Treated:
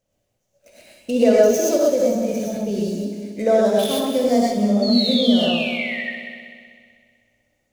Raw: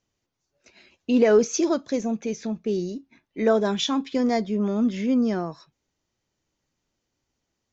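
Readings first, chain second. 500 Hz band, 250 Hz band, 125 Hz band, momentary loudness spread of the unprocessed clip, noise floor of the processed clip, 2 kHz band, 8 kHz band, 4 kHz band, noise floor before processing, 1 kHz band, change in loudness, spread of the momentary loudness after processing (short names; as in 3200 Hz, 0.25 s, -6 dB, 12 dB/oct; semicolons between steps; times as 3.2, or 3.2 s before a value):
+6.5 dB, +4.0 dB, +4.5 dB, 12 LU, -72 dBFS, +8.5 dB, n/a, +10.5 dB, -80 dBFS, +5.0 dB, +5.0 dB, 11 LU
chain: median filter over 9 samples; painted sound fall, 4.82–6.02, 1800–4500 Hz -31 dBFS; EQ curve 190 Hz 0 dB, 370 Hz -7 dB, 560 Hz +11 dB, 960 Hz -7 dB, 1500 Hz -5 dB, 2900 Hz +1 dB, 6000 Hz +8 dB; on a send: multi-head echo 63 ms, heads first and third, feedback 63%, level -11 dB; on the sum: non-linear reverb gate 0.15 s rising, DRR -4 dB; in parallel at -0.5 dB: compressor, threshold -26 dBFS, peak gain reduction 18.5 dB; on the sum: gain -4 dB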